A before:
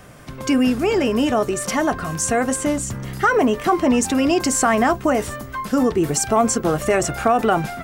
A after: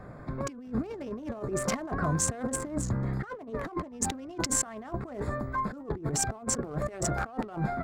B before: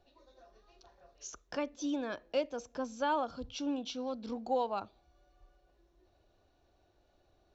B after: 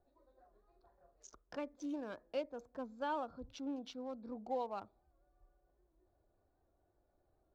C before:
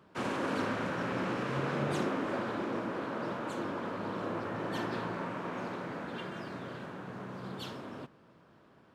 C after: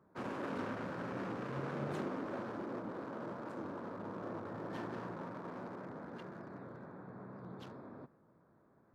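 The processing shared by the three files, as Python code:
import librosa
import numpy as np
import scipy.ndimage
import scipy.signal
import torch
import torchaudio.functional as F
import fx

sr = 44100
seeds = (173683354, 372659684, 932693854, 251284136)

y = fx.wiener(x, sr, points=15)
y = fx.high_shelf(y, sr, hz=4100.0, db=-4.0)
y = fx.over_compress(y, sr, threshold_db=-25.0, ratio=-0.5)
y = fx.record_warp(y, sr, rpm=78.0, depth_cents=100.0)
y = y * librosa.db_to_amplitude(-6.5)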